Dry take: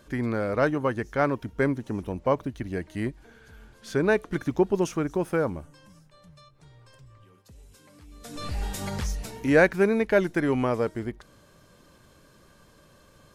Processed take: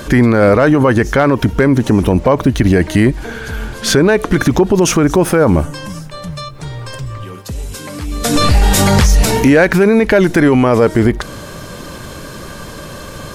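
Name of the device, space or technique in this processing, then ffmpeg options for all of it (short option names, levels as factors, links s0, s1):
loud club master: -af "acompressor=threshold=0.0501:ratio=2,asoftclip=type=hard:threshold=0.141,alimiter=level_in=25.1:limit=0.891:release=50:level=0:latency=1,volume=0.891"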